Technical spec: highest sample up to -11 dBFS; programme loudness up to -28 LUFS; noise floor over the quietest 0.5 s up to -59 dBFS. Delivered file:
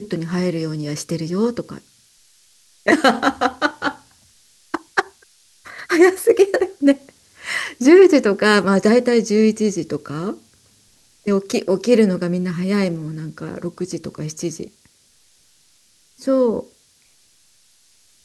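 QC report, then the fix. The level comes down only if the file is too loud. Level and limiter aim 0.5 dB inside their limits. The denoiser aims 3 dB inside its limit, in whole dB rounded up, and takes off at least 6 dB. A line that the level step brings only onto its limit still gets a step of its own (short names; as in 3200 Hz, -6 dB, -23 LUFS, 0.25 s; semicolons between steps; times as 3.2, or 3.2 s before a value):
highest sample -2.0 dBFS: fail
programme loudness -18.0 LUFS: fail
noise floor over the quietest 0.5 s -56 dBFS: fail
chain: gain -10.5 dB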